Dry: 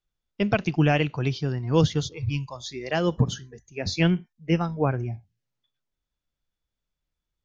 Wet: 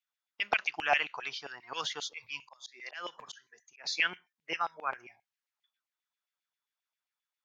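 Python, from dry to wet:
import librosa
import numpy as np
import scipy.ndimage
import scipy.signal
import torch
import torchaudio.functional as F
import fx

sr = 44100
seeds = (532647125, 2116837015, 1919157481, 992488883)

y = fx.filter_lfo_highpass(x, sr, shape='saw_down', hz=7.5, low_hz=760.0, high_hz=2500.0, q=2.6)
y = fx.auto_swell(y, sr, attack_ms=228.0, at=(2.42, 3.84))
y = F.gain(torch.from_numpy(y), -4.5).numpy()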